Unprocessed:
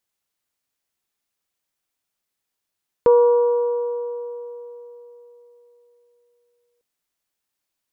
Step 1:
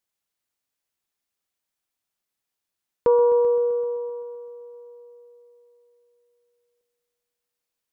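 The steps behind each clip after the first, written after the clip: multi-head delay 129 ms, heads all three, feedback 46%, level -18 dB; trim -3.5 dB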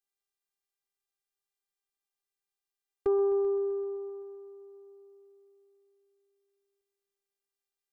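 robot voice 396 Hz; trim -6 dB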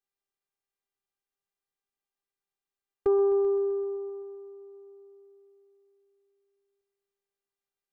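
tape noise reduction on one side only decoder only; trim +3 dB

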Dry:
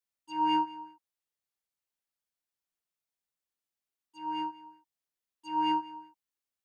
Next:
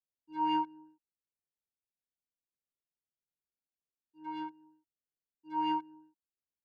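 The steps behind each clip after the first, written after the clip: local Wiener filter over 41 samples; treble shelf 5.7 kHz -11 dB; trim -2.5 dB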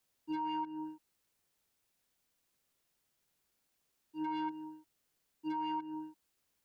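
compression 6:1, threshold -41 dBFS, peak gain reduction 13.5 dB; peak limiter -46.5 dBFS, peak gain reduction 12 dB; trim +16 dB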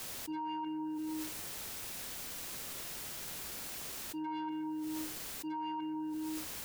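on a send at -16.5 dB: reverberation RT60 0.45 s, pre-delay 116 ms; on the sum: level flattener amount 100%; trim -3.5 dB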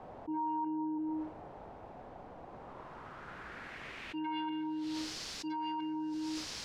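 low-pass sweep 770 Hz -> 5.1 kHz, 2.48–5.12 s; trim +1 dB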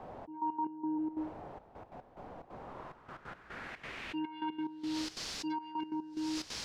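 trance gate "xxx..x.x..xxx.xx" 180 bpm -12 dB; trim +2 dB

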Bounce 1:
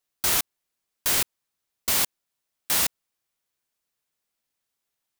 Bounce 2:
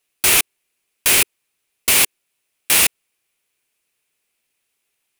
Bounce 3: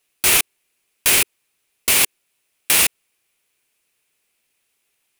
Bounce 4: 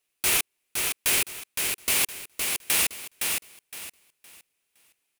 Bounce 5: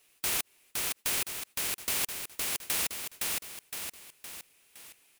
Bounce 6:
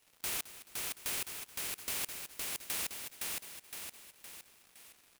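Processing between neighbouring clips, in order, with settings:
fifteen-band graphic EQ 400 Hz +6 dB, 2.5 kHz +11 dB, 10 kHz +7 dB; trim +5 dB
peak limiter -7.5 dBFS, peak gain reduction 6 dB; trim +3 dB
feedback delay 514 ms, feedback 26%, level -4.5 dB; trim -8 dB
spectrum-flattening compressor 2:1; trim -4.5 dB
crackle 310 per s -43 dBFS; feedback delay 215 ms, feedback 45%, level -15 dB; trim -6.5 dB

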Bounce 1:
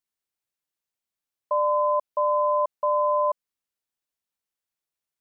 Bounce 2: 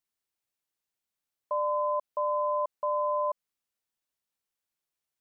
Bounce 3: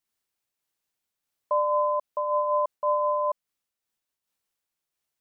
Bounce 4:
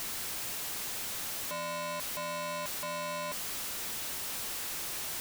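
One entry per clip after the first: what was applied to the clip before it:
peak limiter -22 dBFS, peak gain reduction 6 dB
random flutter of the level, depth 55%; trim +6 dB
one-bit comparator; trim -6.5 dB

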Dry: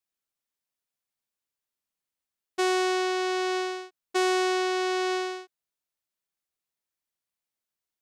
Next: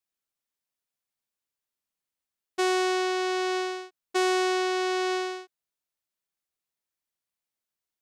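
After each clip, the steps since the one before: no audible change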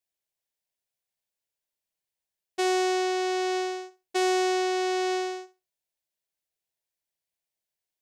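graphic EQ with 31 bands 250 Hz -11 dB, 630 Hz +4 dB, 1.25 kHz -12 dB; flutter echo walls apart 11.1 m, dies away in 0.25 s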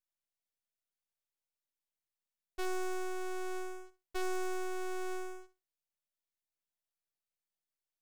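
half-wave rectifier; trim -4.5 dB

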